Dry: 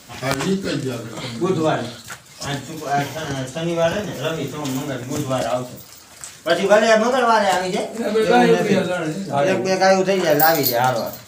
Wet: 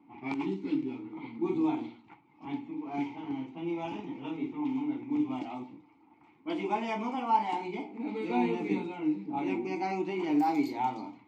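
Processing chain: level-controlled noise filter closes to 1.2 kHz, open at -13 dBFS; vowel filter u

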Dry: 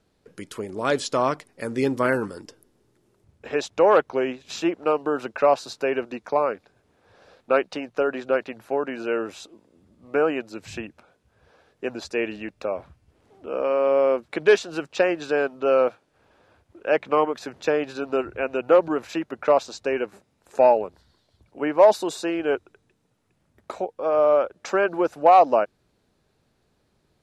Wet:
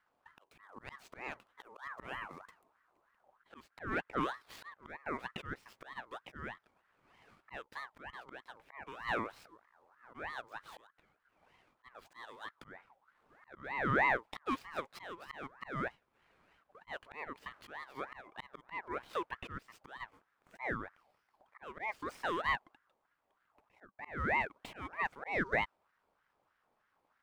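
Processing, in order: median filter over 9 samples; slow attack 453 ms; ring modulator with a swept carrier 1.1 kHz, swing 40%, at 3.2 Hz; trim -7 dB

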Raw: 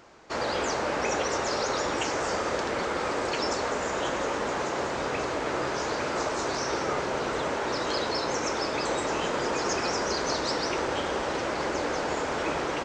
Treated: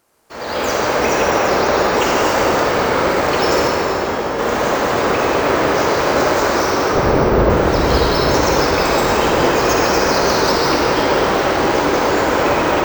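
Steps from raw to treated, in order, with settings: companding laws mixed up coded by A; 1.21–1.94 s: treble shelf 6.2 kHz -11.5 dB; added noise violet -56 dBFS; 3.68–4.39 s: feedback comb 57 Hz, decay 0.56 s, harmonics all, mix 100%; 6.95–7.50 s: tilt EQ -4.5 dB/octave; level rider gain up to 14 dB; reverberation RT60 5.8 s, pre-delay 45 ms, DRR -4 dB; careless resampling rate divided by 2×, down filtered, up hold; trim -4 dB

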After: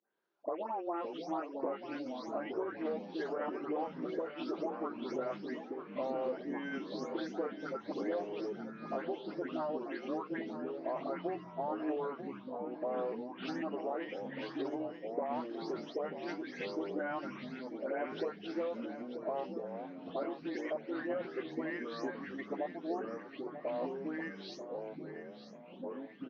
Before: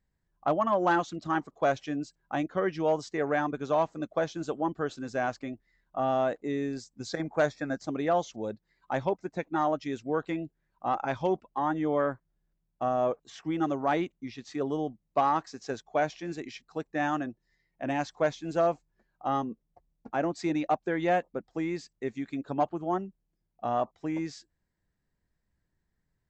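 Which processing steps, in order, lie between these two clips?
delay that grows with frequency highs late, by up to 232 ms; high-pass 330 Hz 24 dB/octave; hum notches 60/120/180/240/300/360/420/480 Hz; compression 6:1, threshold -40 dBFS, peak gain reduction 18 dB; formant shift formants -3 st; distance through air 170 m; feedback delay 939 ms, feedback 37%, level -11 dB; ever faster or slower copies 441 ms, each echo -4 st, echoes 3, each echo -6 dB; trim +5 dB

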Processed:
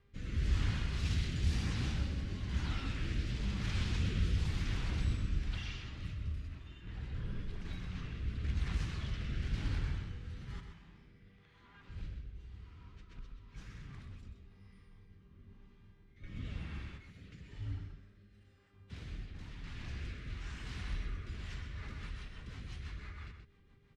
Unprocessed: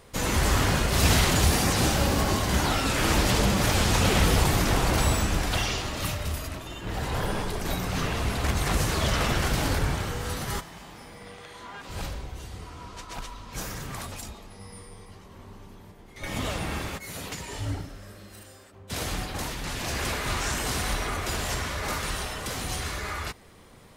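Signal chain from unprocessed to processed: mains buzz 400 Hz, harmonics 31, -54 dBFS -6 dB/octave; amplifier tone stack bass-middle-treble 6-0-2; level-controlled noise filter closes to 2.2 kHz, open at -20.5 dBFS; rotary cabinet horn 1 Hz, later 6 Hz, at 21.22 s; echo from a far wall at 22 m, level -7 dB; trim +4.5 dB

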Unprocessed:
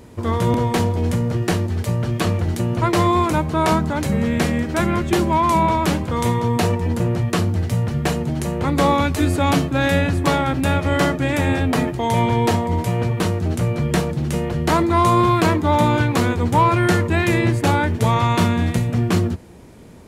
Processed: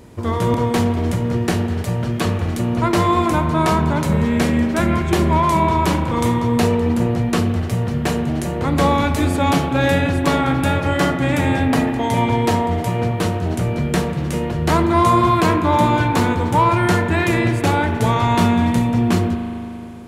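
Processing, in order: spring tank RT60 3 s, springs 38 ms, chirp 65 ms, DRR 6 dB

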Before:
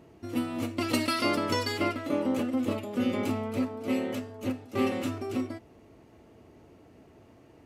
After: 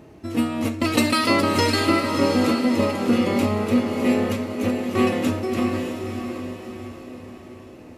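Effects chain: echo that smears into a reverb 614 ms, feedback 46%, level -5.5 dB; tape speed -4%; trim +8 dB

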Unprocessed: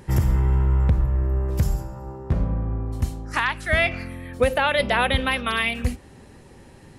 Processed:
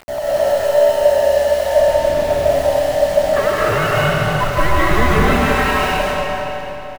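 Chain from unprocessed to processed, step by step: split-band scrambler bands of 500 Hz; low-pass 2.2 kHz 12 dB/octave; in parallel at -7.5 dB: Schmitt trigger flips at -34 dBFS; on the sum: phaser 1 Hz, delay 2.3 ms, feedback 39%; bit crusher 6-bit; on a send: feedback delay 297 ms, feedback 45%, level -11.5 dB; on the sum: algorithmic reverb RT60 3.3 s, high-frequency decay 0.75×, pre-delay 105 ms, DRR -7.5 dB; trim -3.5 dB

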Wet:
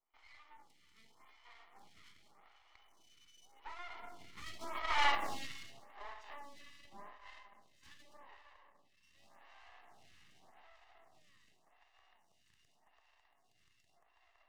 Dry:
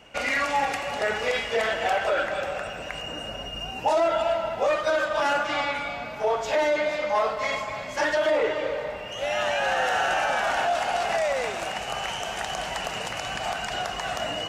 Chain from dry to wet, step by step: comb filter that takes the minimum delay 1 ms; Doppler pass-by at 5.08 s, 18 m/s, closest 2.4 m; Bessel high-pass 480 Hz, order 8; treble shelf 8.6 kHz -10.5 dB; half-wave rectifier; lamp-driven phase shifter 0.86 Hz; trim +3 dB

